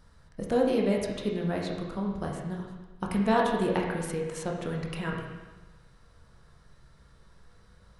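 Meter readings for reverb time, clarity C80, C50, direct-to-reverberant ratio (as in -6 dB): 1.2 s, 4.5 dB, 2.5 dB, -1.5 dB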